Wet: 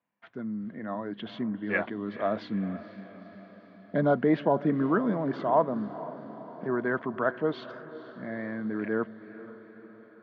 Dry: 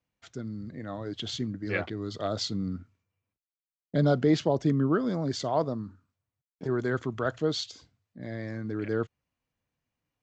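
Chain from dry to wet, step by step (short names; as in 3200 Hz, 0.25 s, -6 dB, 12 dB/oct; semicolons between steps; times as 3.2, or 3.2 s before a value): speaker cabinet 200–2700 Hz, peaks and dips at 210 Hz +9 dB, 660 Hz +5 dB, 1000 Hz +9 dB, 1700 Hz +6 dB; diffused feedback echo 0.477 s, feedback 58%, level -15 dB; gain -1 dB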